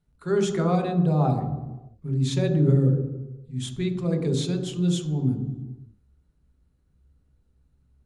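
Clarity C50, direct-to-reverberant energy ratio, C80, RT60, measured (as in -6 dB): 7.0 dB, 4.0 dB, 9.0 dB, 1.1 s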